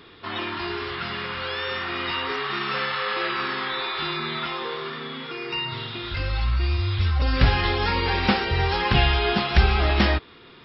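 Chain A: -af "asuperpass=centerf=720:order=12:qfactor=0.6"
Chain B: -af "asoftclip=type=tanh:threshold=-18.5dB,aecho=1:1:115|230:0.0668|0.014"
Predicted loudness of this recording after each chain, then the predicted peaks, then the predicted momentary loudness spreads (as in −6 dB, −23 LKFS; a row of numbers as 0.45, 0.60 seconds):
−30.0, −26.5 LKFS; −10.5, −18.0 dBFS; 11, 7 LU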